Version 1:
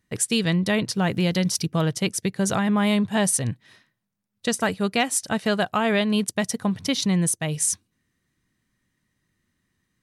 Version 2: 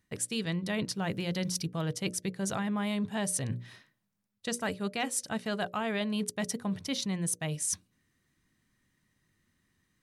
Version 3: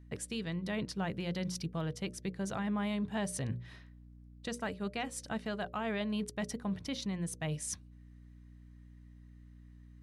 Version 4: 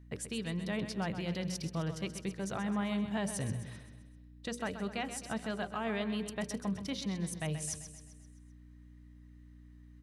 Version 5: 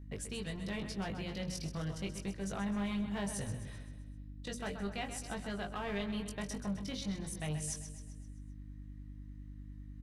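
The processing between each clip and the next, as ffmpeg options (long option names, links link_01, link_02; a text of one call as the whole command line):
ffmpeg -i in.wav -af "bandreject=frequency=60:width_type=h:width=6,bandreject=frequency=120:width_type=h:width=6,bandreject=frequency=180:width_type=h:width=6,bandreject=frequency=240:width_type=h:width=6,bandreject=frequency=300:width_type=h:width=6,bandreject=frequency=360:width_type=h:width=6,bandreject=frequency=420:width_type=h:width=6,bandreject=frequency=480:width_type=h:width=6,bandreject=frequency=540:width_type=h:width=6,bandreject=frequency=600:width_type=h:width=6,areverse,acompressor=threshold=-31dB:ratio=4,areverse" out.wav
ffmpeg -i in.wav -af "highshelf=frequency=5700:gain=-11,alimiter=level_in=4dB:limit=-24dB:level=0:latency=1:release=430,volume=-4dB,aeval=exprs='val(0)+0.002*(sin(2*PI*60*n/s)+sin(2*PI*2*60*n/s)/2+sin(2*PI*3*60*n/s)/3+sin(2*PI*4*60*n/s)/4+sin(2*PI*5*60*n/s)/5)':channel_layout=same,volume=1dB" out.wav
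ffmpeg -i in.wav -af "aecho=1:1:130|260|390|520|650|780:0.299|0.155|0.0807|0.042|0.0218|0.0114" out.wav
ffmpeg -i in.wav -filter_complex "[0:a]acrossover=split=2500[link_01][link_02];[link_01]asoftclip=type=hard:threshold=-33dB[link_03];[link_03][link_02]amix=inputs=2:normalize=0,aeval=exprs='val(0)+0.00398*(sin(2*PI*50*n/s)+sin(2*PI*2*50*n/s)/2+sin(2*PI*3*50*n/s)/3+sin(2*PI*4*50*n/s)/4+sin(2*PI*5*50*n/s)/5)':channel_layout=same,asplit=2[link_04][link_05];[link_05]adelay=20,volume=-4.5dB[link_06];[link_04][link_06]amix=inputs=2:normalize=0,volume=-3dB" out.wav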